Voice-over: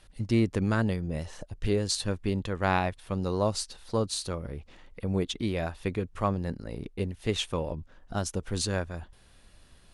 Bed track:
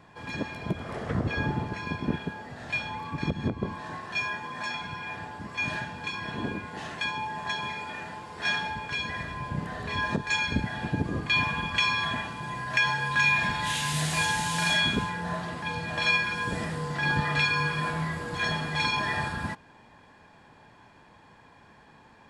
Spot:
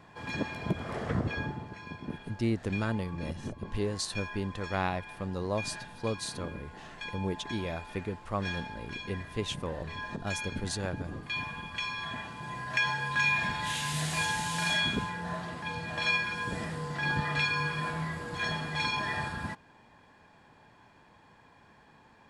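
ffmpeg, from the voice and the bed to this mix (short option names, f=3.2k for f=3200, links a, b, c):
-filter_complex "[0:a]adelay=2100,volume=-5dB[a];[1:a]volume=5.5dB,afade=t=out:st=1.06:d=0.52:silence=0.334965,afade=t=in:st=11.93:d=0.61:silence=0.501187[b];[a][b]amix=inputs=2:normalize=0"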